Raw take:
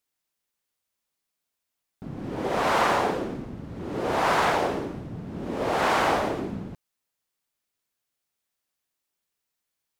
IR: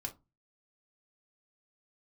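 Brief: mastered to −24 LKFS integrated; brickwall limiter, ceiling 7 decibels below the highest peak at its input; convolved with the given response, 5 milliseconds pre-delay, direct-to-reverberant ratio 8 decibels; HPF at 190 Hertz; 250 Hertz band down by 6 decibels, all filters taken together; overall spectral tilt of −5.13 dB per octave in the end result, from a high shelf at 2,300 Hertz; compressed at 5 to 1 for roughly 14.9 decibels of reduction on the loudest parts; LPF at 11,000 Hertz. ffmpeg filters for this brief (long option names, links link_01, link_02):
-filter_complex "[0:a]highpass=190,lowpass=11000,equalizer=frequency=250:width_type=o:gain=-6.5,highshelf=frequency=2300:gain=-8,acompressor=threshold=-38dB:ratio=5,alimiter=level_in=10dB:limit=-24dB:level=0:latency=1,volume=-10dB,asplit=2[link_01][link_02];[1:a]atrim=start_sample=2205,adelay=5[link_03];[link_02][link_03]afir=irnorm=-1:irlink=0,volume=-7dB[link_04];[link_01][link_04]amix=inputs=2:normalize=0,volume=19dB"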